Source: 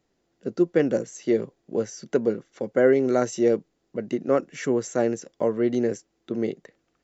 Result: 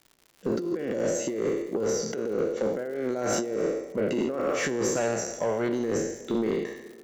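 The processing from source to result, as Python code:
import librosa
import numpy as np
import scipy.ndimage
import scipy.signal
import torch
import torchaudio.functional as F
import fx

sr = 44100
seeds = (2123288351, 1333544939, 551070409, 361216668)

p1 = fx.spec_trails(x, sr, decay_s=0.93)
p2 = fx.noise_reduce_blind(p1, sr, reduce_db=9)
p3 = fx.peak_eq(p2, sr, hz=310.0, db=-11.0, octaves=1.8, at=(4.96, 5.69))
p4 = fx.over_compress(p3, sr, threshold_db=-26.0, ratio=-1.0)
p5 = fx.dmg_crackle(p4, sr, seeds[0], per_s=170.0, level_db=-41.0)
p6 = 10.0 ** (-19.0 / 20.0) * np.tanh(p5 / 10.0 ** (-19.0 / 20.0))
y = p6 + fx.echo_wet_bandpass(p6, sr, ms=140, feedback_pct=67, hz=450.0, wet_db=-16.5, dry=0)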